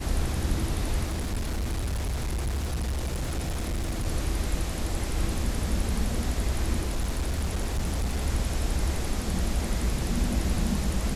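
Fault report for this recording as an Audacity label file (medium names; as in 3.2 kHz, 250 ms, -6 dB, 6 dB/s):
1.030000	4.070000	clipped -25.5 dBFS
6.850000	8.270000	clipped -23 dBFS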